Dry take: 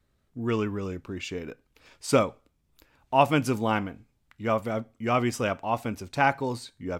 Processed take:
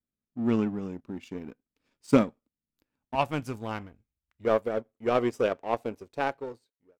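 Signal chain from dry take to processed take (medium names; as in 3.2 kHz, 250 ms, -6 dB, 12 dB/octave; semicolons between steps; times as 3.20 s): fade out at the end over 1.11 s; peaking EQ 230 Hz +14 dB 1.1 oct, from 3.15 s 61 Hz, from 4.45 s 450 Hz; power-law waveshaper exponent 1.4; trim -3 dB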